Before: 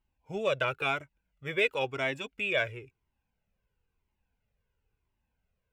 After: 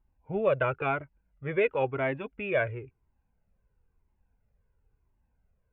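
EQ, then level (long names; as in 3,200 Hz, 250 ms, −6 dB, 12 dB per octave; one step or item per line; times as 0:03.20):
Gaussian smoothing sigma 4.3 samples
low-shelf EQ 80 Hz +6.5 dB
+4.5 dB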